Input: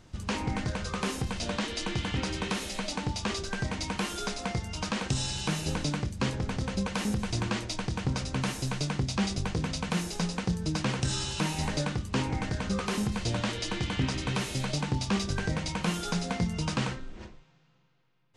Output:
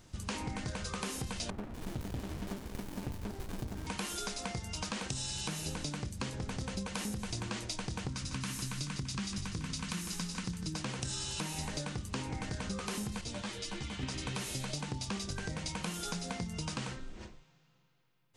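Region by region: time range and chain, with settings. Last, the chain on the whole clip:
1.5–3.87 bands offset in time lows, highs 0.24 s, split 1400 Hz + running maximum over 65 samples
8.09–10.74 band shelf 580 Hz -9 dB 1.3 oct + echo 0.153 s -9.5 dB
13.21–14.03 resonator 66 Hz, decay 0.19 s, mix 50% + ensemble effect
whole clip: high shelf 6800 Hz +11.5 dB; compressor, threshold -31 dBFS; gain -3.5 dB

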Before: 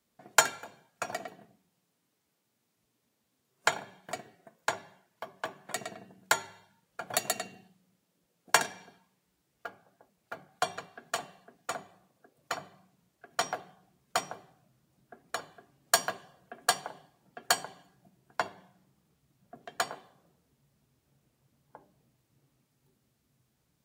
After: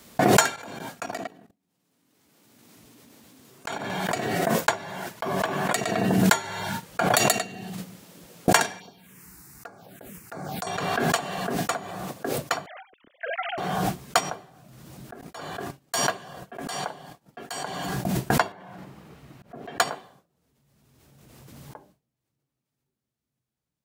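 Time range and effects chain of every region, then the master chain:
0.56–3.9 bell 270 Hz +7 dB 0.55 oct + level quantiser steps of 20 dB
8.79–10.67 compressor 2:1, threshold -46 dBFS + high shelf 4300 Hz +6.5 dB + envelope phaser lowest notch 480 Hz, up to 3100 Hz, full sweep at -48 dBFS
12.66–13.58 sine-wave speech + bell 890 Hz -14.5 dB 0.97 oct
15.21–17.63 notches 60/120/180/240/300/360/420 Hz + expander -55 dBFS + auto swell 0.169 s
18.52–19.79 notch 3400 Hz, Q 28 + auto swell 0.142 s + tone controls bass -5 dB, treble -13 dB
whole clip: gate with hold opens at -53 dBFS; maximiser +10 dB; backwards sustainer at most 23 dB/s; gain -2 dB

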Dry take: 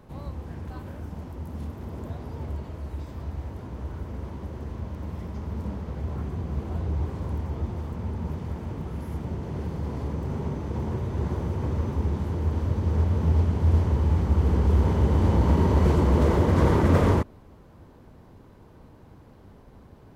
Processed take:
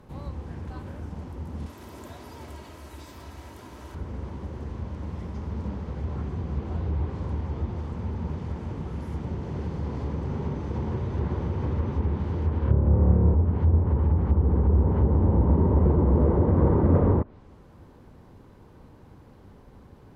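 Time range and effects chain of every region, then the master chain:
1.66–3.95 tilt +3 dB/oct + comb 3.1 ms, depth 33%
12.59–13.35 air absorption 80 m + flutter echo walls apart 4.8 m, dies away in 1.2 s
whole clip: notch 650 Hz, Q 16; treble ducked by the level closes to 840 Hz, closed at -16.5 dBFS

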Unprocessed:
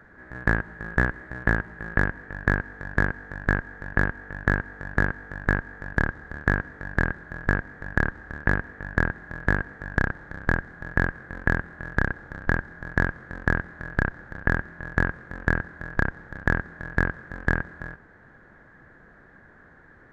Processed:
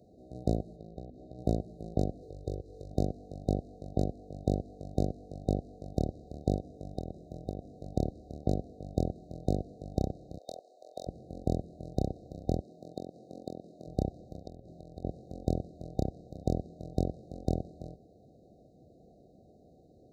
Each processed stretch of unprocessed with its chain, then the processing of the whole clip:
0.76–1.39 notches 50/100/150/200/250/300/350 Hz + compressor 3:1, threshold -37 dBFS + air absorption 69 m
2.22–2.91 comb 2.2 ms, depth 75% + compressor 1.5:1, threshold -39 dBFS + mismatched tape noise reduction encoder only
6.57–7.73 notch 4400 Hz, Q 11 + compressor 12:1, threshold -24 dBFS
10.38–11.07 HPF 510 Hz 24 dB/oct + Doppler distortion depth 0.25 ms
12.6–13.87 HPF 210 Hz + compressor 2.5:1, threshold -31 dBFS
14.39–15.05 notches 60/120/180/240/300/360/420/480/540/600 Hz + compressor, threshold -36 dBFS
whole clip: FFT band-reject 770–3700 Hz; HPF 56 Hz; low shelf 270 Hz -4.5 dB

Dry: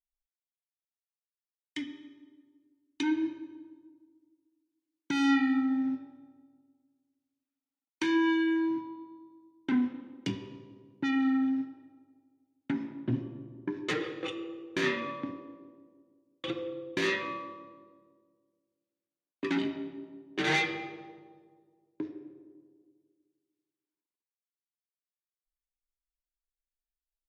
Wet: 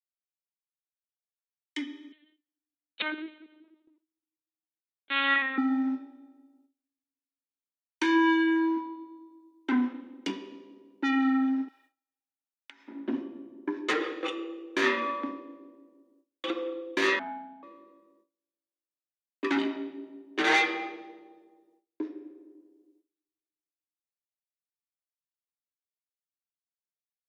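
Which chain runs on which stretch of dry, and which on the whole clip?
2.12–5.58 HPF 200 Hz 6 dB/oct + tilt shelf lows -10 dB, about 1100 Hz + LPC vocoder at 8 kHz pitch kept
11.68–12.88 high shelf 2200 Hz +9 dB + compressor, threshold -44 dBFS + HPF 1000 Hz
17.19–17.63 band-pass 620 Hz, Q 1.2 + frequency shift -310 Hz
whole clip: steep high-pass 230 Hz 36 dB/oct; gate with hold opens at -58 dBFS; dynamic EQ 1100 Hz, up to +6 dB, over -47 dBFS, Q 1; gain +2 dB

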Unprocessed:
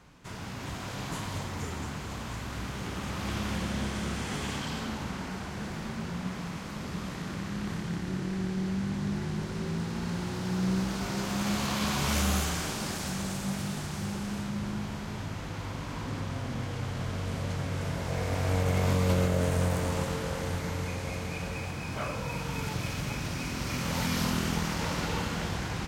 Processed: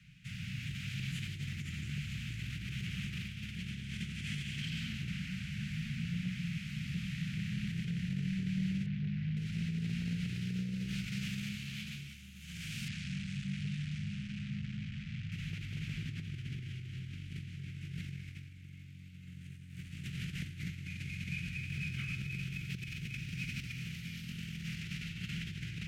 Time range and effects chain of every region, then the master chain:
8.86–9.37 HPF 43 Hz 6 dB/oct + air absorption 210 m + core saturation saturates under 380 Hz
12.88–15.32 air absorption 85 m + core saturation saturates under 500 Hz
whole clip: elliptic band-stop 140–2600 Hz, stop band 50 dB; negative-ratio compressor -40 dBFS, ratio -1; three-band isolator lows -20 dB, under 180 Hz, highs -22 dB, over 2000 Hz; gain +11 dB

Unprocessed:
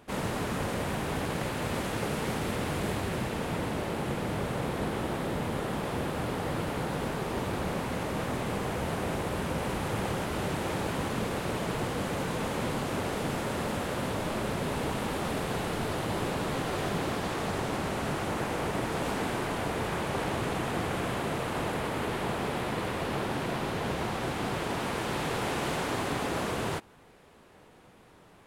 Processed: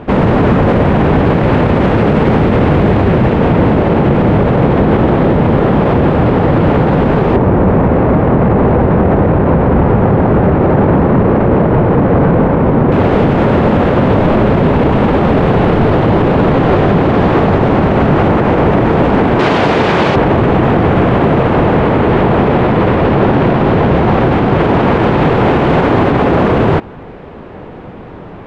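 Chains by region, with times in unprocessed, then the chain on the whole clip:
7.36–12.92 median filter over 15 samples + LPF 3200 Hz + echo 0.202 s -3.5 dB
19.39–20.16 HPF 180 Hz 6 dB/oct + bell 5500 Hz +14.5 dB 2 oct
whole clip: Chebyshev low-pass 2700 Hz, order 2; tilt shelf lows +7 dB, about 1200 Hz; maximiser +23.5 dB; gain -1 dB

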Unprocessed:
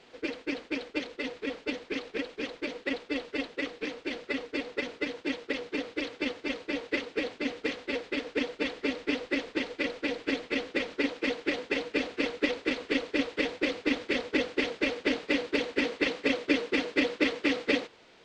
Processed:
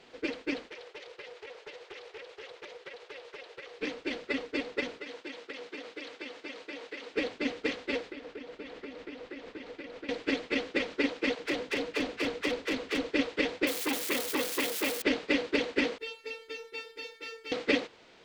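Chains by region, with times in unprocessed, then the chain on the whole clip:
0.69–3.79 steep high-pass 360 Hz 72 dB/oct + compressor 4:1, threshold -43 dBFS + Doppler distortion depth 0.27 ms
5.01–7.14 HPF 480 Hz 6 dB/oct + compressor, threshold -37 dBFS
8.12–10.09 compressor 12:1, threshold -38 dBFS + high shelf 4000 Hz -8 dB
11.35–13.1 hard clip -25.5 dBFS + dispersion lows, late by 47 ms, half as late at 360 Hz
13.67–15.02 switching spikes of -25 dBFS + HPF 150 Hz 6 dB/oct + core saturation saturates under 1400 Hz
15.98–17.52 high shelf 2000 Hz +8.5 dB + resonator 450 Hz, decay 0.29 s, mix 100% + backlash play -59 dBFS
whole clip: dry

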